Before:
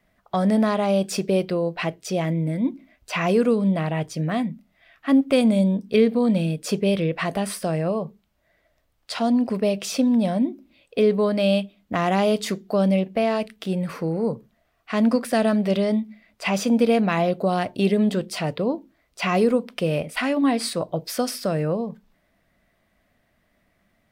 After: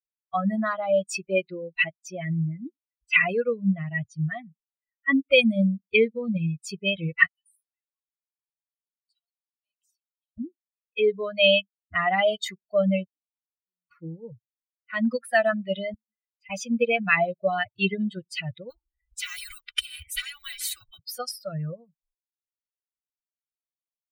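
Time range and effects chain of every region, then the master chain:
7.26–10.38 differentiator + compressor 2:1, threshold -51 dBFS
13.06–13.91 compressor, threshold -34 dBFS + vocal tract filter u
15.94–16.5 high shelf 9400 Hz -10.5 dB + compressor 8:1, threshold -37 dBFS + Butterworth band-stop 950 Hz, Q 0.82
18.7–20.99 block floating point 7-bit + comb 2.6 ms + spectral compressor 4:1
whole clip: per-bin expansion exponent 3; band shelf 2200 Hz +12.5 dB 1.3 oct; comb 1.6 ms, depth 59%; gain +1.5 dB

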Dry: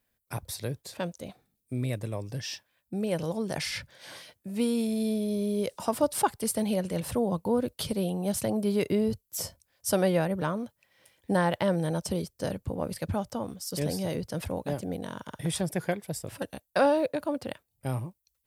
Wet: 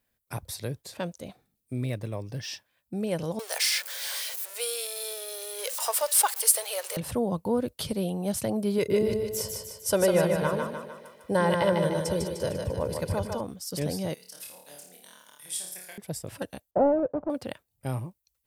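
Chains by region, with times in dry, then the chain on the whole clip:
1.85–2.48 median filter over 3 samples + bell 7500 Hz -7 dB 0.29 oct
3.39–6.97 zero-crossing step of -38 dBFS + elliptic high-pass 460 Hz, stop band 60 dB + tilt +3.5 dB/oct
8.78–13.41 comb 2 ms, depth 50% + split-band echo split 400 Hz, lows 0.103 s, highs 0.151 s, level -4 dB
14.14–15.98 differentiator + flutter echo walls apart 4.7 m, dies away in 0.54 s
16.71–17.3 half-waves squared off + Chebyshev low-pass 800 Hz, order 3 + low shelf 400 Hz -4.5 dB
whole clip: dry

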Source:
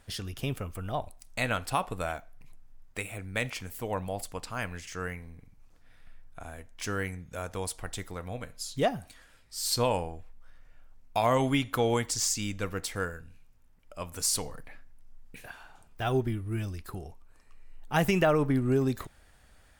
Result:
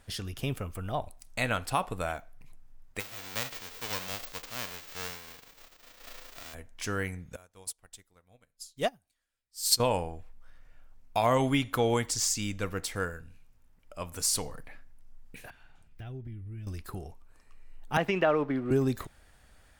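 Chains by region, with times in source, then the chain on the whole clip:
2.99–6.53 spectral whitening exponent 0.1 + bell 11000 Hz -14 dB 0.99 oct
7.36–9.8 high shelf 3300 Hz +9 dB + upward expander 2.5:1, over -40 dBFS
15.5–16.67 EQ curve 130 Hz 0 dB, 1100 Hz -18 dB, 2000 Hz -9 dB, 7600 Hz -19 dB + compressor 3:1, threshold -40 dBFS + mismatched tape noise reduction encoder only
17.97–18.71 G.711 law mismatch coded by A + three-band isolator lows -13 dB, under 220 Hz, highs -22 dB, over 4200 Hz
whole clip: dry

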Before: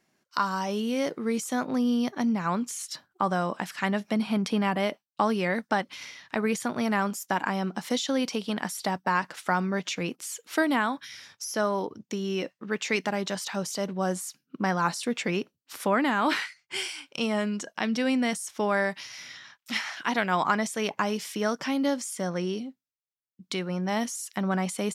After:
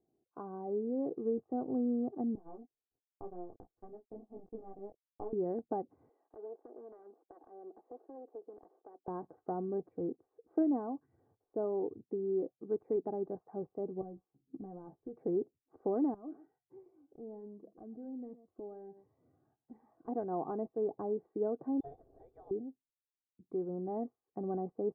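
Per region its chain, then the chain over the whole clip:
2.35–5.33 de-esser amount 80% + power-law curve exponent 2 + detuned doubles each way 14 cents
6.09–9.08 self-modulated delay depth 0.79 ms + HPF 370 Hz 24 dB/oct + compressor 2:1, threshold -44 dBFS
14.01–15.17 tone controls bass +8 dB, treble +8 dB + compressor 16:1, threshold -33 dBFS + doubler 15 ms -6.5 dB
16.14–20.08 echo 0.122 s -18.5 dB + compressor 2:1, threshold -43 dBFS + cascading phaser rising 1.3 Hz
21.8–22.51 high shelf 2200 Hz +5 dB + inverted band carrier 3800 Hz
whole clip: inverse Chebyshev low-pass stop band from 2800 Hz, stop band 70 dB; comb 2.6 ms, depth 63%; gain -5 dB

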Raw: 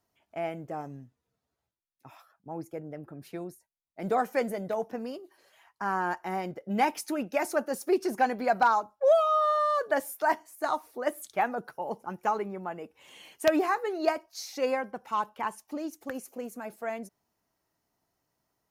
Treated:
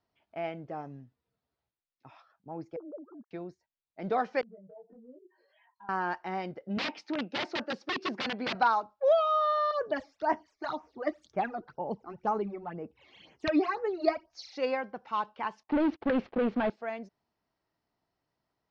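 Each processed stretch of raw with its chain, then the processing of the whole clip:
2.76–3.31 sine-wave speech + steep low-pass 1400 Hz 72 dB/oct
4.41–5.89 spectral contrast raised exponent 2.7 + compressor 8:1, threshold -43 dBFS + detuned doubles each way 30 cents
6.77–8.55 wrapped overs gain 24 dB + HPF 170 Hz + tone controls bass +4 dB, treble -7 dB
9.71–14.52 low shelf 220 Hz +11 dB + phaser stages 12, 2 Hz, lowest notch 150–4200 Hz
15.63–16.7 sample leveller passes 5 + air absorption 450 m
whole clip: steep low-pass 5100 Hz 36 dB/oct; dynamic EQ 3800 Hz, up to +4 dB, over -45 dBFS, Q 0.88; gain -2.5 dB

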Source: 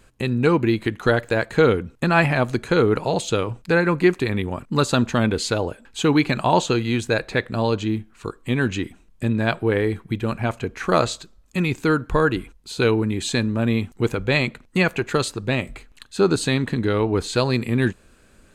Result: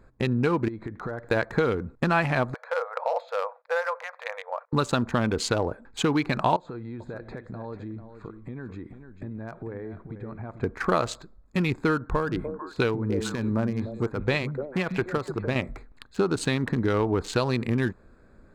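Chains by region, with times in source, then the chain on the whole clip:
0.68–1.29 compressor, threshold -30 dBFS + air absorption 73 m
2.54–4.73 compressor 4:1, threshold -18 dBFS + brick-wall FIR high-pass 470 Hz + air absorption 240 m
6.56–10.63 high shelf 7200 Hz -12 dB + compressor, threshold -34 dBFS + echo 0.444 s -10 dB
11.98–15.56 tremolo triangle 2.7 Hz, depth 75% + delay with a stepping band-pass 0.148 s, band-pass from 170 Hz, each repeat 1.4 oct, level -5 dB
whole clip: Wiener smoothing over 15 samples; compressor, threshold -21 dBFS; dynamic EQ 1100 Hz, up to +4 dB, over -42 dBFS, Q 0.94

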